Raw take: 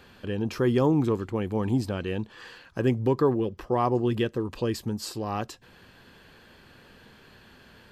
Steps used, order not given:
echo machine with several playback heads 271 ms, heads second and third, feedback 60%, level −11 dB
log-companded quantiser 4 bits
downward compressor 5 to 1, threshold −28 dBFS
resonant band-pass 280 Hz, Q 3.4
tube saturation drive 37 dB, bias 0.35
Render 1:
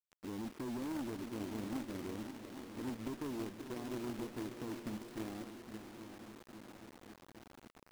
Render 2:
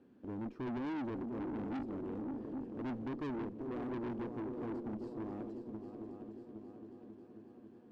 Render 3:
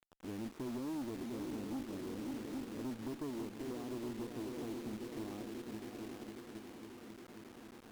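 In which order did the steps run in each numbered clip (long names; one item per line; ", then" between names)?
downward compressor, then resonant band-pass, then tube saturation, then echo machine with several playback heads, then log-companded quantiser
echo machine with several playback heads, then log-companded quantiser, then resonant band-pass, then tube saturation, then downward compressor
echo machine with several playback heads, then downward compressor, then resonant band-pass, then log-companded quantiser, then tube saturation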